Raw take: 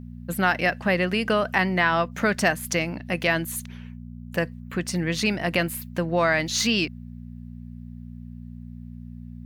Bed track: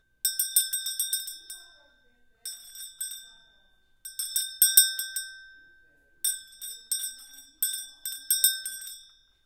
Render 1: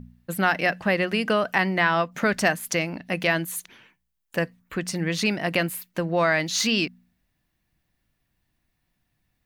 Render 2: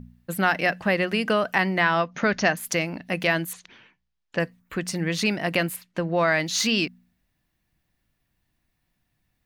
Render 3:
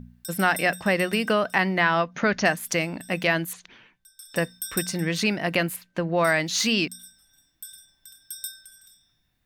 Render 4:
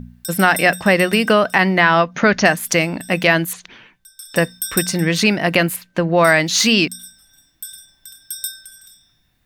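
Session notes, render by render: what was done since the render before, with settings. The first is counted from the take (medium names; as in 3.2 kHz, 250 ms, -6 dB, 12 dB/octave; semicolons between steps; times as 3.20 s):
de-hum 60 Hz, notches 4
2.00–2.57 s: brick-wall FIR low-pass 6.8 kHz; 3.53–4.40 s: low-pass 5.7 kHz 24 dB/octave; 5.76–6.28 s: distance through air 60 m
add bed track -13 dB
trim +8.5 dB; peak limiter -1 dBFS, peak gain reduction 2.5 dB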